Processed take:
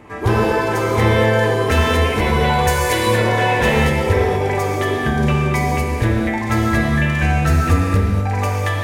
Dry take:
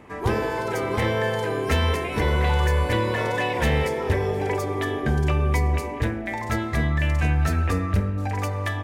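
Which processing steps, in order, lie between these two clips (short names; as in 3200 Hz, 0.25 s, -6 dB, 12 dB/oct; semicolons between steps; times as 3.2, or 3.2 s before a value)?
2.67–3.07 tone controls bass -14 dB, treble +11 dB; non-linear reverb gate 0.26 s flat, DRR -2 dB; gain +3.5 dB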